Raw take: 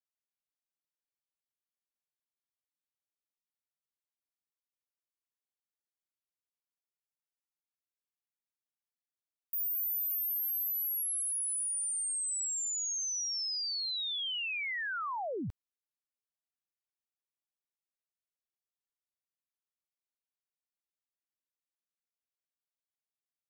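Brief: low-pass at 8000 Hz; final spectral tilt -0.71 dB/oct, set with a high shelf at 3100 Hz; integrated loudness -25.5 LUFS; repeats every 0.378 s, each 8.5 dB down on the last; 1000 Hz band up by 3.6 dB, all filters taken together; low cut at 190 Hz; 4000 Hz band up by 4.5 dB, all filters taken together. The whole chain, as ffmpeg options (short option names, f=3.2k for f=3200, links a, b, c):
-af "highpass=190,lowpass=8k,equalizer=f=1k:t=o:g=4.5,highshelf=f=3.1k:g=-3,equalizer=f=4k:t=o:g=8,aecho=1:1:378|756|1134|1512:0.376|0.143|0.0543|0.0206,volume=6dB"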